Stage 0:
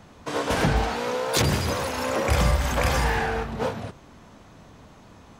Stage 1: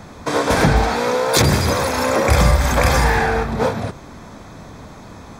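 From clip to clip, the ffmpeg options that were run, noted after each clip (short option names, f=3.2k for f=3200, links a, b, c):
-filter_complex "[0:a]bandreject=f=2.9k:w=5.2,asplit=2[a][b];[b]acompressor=threshold=-32dB:ratio=6,volume=-1.5dB[c];[a][c]amix=inputs=2:normalize=0,volume=6dB"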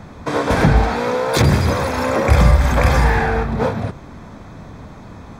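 -af "bass=f=250:g=4,treble=f=4k:g=-7,volume=-1dB"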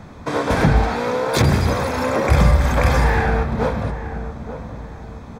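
-filter_complex "[0:a]asplit=2[a][b];[b]adelay=876,lowpass=f=1.3k:p=1,volume=-11dB,asplit=2[c][d];[d]adelay=876,lowpass=f=1.3k:p=1,volume=0.41,asplit=2[e][f];[f]adelay=876,lowpass=f=1.3k:p=1,volume=0.41,asplit=2[g][h];[h]adelay=876,lowpass=f=1.3k:p=1,volume=0.41[i];[a][c][e][g][i]amix=inputs=5:normalize=0,volume=-2dB"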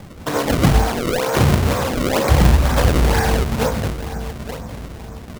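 -af "acrusher=samples=30:mix=1:aa=0.000001:lfo=1:lforange=48:lforate=2.1,volume=1dB"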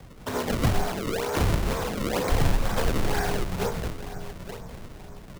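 -af "afreqshift=-43,volume=-8.5dB"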